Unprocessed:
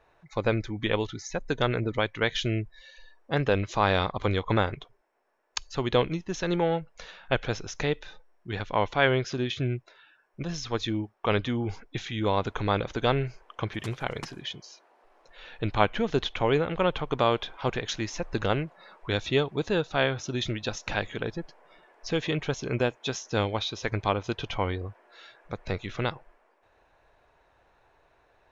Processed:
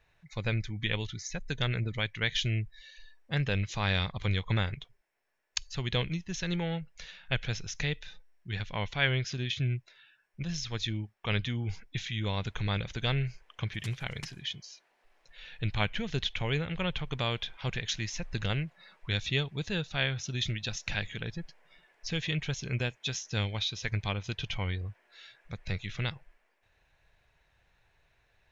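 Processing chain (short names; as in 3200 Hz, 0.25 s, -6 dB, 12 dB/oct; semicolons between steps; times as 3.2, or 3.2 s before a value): band shelf 580 Hz -12 dB 2.8 oct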